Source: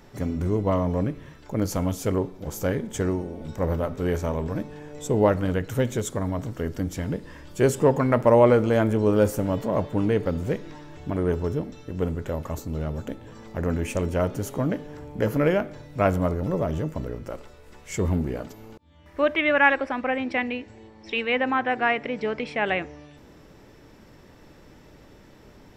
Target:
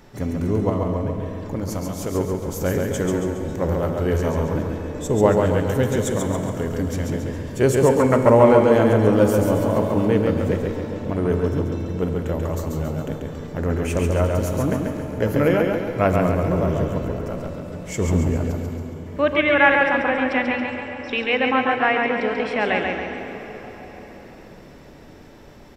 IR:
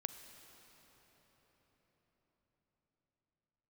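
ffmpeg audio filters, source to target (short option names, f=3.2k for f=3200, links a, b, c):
-filter_complex "[0:a]asettb=1/sr,asplit=3[a][b][c];[a]atrim=end=0.694[d];[b]atrim=start=0.69:end=2.15,asetpts=PTS-STARTPTS,afade=t=in:d=0.004:c=qsin,afade=t=out:st=1.456:d=0.004:c=qsin,acompressor=threshold=-26dB:ratio=6[e];[c]atrim=start=2.146[f];[d][e]acrossfade=d=0.004:c1=hsin:c2=qsin[g];[g][f]acrossfade=d=0.004:c1=qsin:c2=hsin,aecho=1:1:138|276|414|552|690|828:0.631|0.303|0.145|0.0698|0.0335|0.0161[h];[1:a]atrim=start_sample=2205[i];[h][i]afir=irnorm=-1:irlink=0,volume=4.5dB"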